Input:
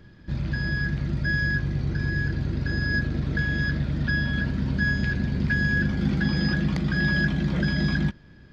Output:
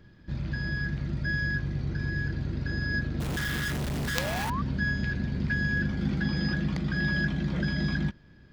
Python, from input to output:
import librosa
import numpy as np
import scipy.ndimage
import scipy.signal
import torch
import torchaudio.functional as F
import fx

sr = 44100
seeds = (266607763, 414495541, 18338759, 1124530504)

y = fx.spec_paint(x, sr, seeds[0], shape='rise', start_s=4.15, length_s=0.47, low_hz=480.0, high_hz=1200.0, level_db=-29.0)
y = fx.quant_companded(y, sr, bits=2, at=(3.2, 4.5))
y = y * librosa.db_to_amplitude(-4.5)